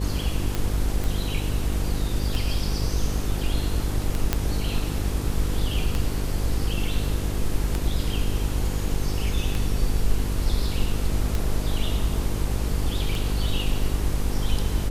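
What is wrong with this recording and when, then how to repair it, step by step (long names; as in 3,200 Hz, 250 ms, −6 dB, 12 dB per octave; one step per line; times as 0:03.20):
mains buzz 50 Hz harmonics 10 −28 dBFS
scratch tick 33 1/3 rpm
0:01.04: click
0:04.33: click −6 dBFS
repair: click removal
hum removal 50 Hz, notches 10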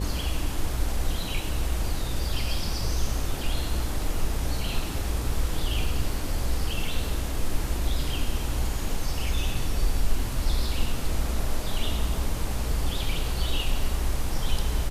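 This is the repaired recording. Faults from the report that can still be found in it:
none of them is left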